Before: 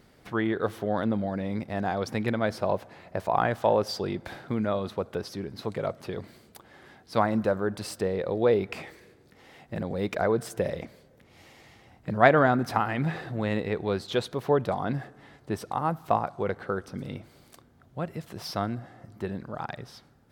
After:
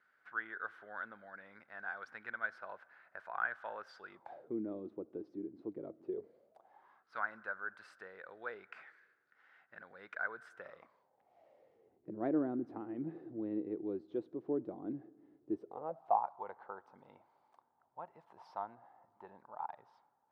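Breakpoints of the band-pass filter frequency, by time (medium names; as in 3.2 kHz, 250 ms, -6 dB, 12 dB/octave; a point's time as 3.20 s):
band-pass filter, Q 7.2
4.08 s 1.5 kHz
4.57 s 320 Hz
6.02 s 320 Hz
7.18 s 1.5 kHz
10.54 s 1.5 kHz
12.19 s 320 Hz
15.55 s 320 Hz
16.20 s 900 Hz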